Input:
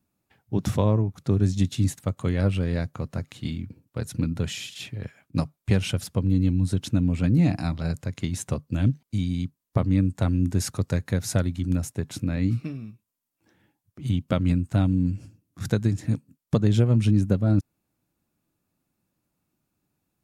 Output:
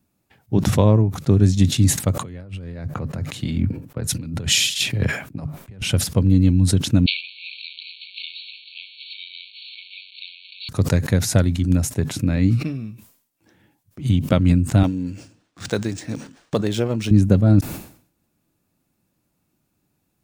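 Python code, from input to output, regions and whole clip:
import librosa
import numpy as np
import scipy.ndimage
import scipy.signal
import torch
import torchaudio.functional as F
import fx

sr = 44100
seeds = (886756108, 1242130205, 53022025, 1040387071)

y = fx.chain(x, sr, fx.over_compress(threshold_db=-33.0, ratio=-1.0),
    fx.band_widen(depth_pct=70), at=(2.16, 5.82))
y = fx.chain(y, sr, fx.crossing_spikes(level_db=-19.5),
    fx.brickwall_bandpass(low_hz=2200.0, high_hz=4500.0),
    fx.echo_single(ms=901, db=-21.5), at=(7.06, 10.69))
y = fx.chain(y, sr, fx.bass_treble(bass_db=-15, treble_db=4),
    fx.resample_linear(factor=3), at=(14.83, 17.11))
y = fx.peak_eq(y, sr, hz=1200.0, db=-2.0, octaves=0.77)
y = fx.sustainer(y, sr, db_per_s=110.0)
y = F.gain(torch.from_numpy(y), 6.5).numpy()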